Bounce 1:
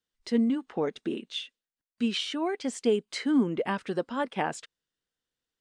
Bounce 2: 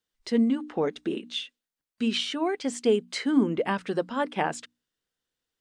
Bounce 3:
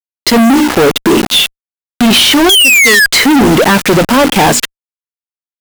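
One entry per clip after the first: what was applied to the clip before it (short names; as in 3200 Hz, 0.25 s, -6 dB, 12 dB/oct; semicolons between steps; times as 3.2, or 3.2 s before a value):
notches 60/120/180/240/300 Hz; gain +2.5 dB
painted sound fall, 2.49–3.06, 1600–3400 Hz -18 dBFS; bit-crush 7-bit; fuzz box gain 40 dB, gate -42 dBFS; gain +8 dB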